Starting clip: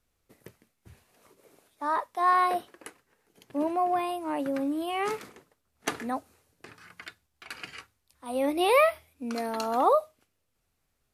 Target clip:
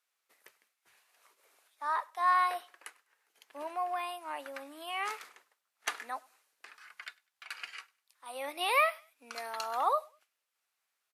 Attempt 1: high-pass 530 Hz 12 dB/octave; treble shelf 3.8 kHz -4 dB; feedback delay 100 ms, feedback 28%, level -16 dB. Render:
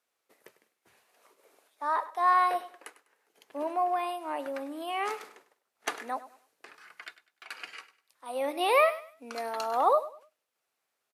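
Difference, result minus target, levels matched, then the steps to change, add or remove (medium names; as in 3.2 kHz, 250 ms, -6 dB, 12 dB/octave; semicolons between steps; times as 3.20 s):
echo-to-direct +10.5 dB; 500 Hz band +5.0 dB
change: high-pass 1.1 kHz 12 dB/octave; change: feedback delay 100 ms, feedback 28%, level -26.5 dB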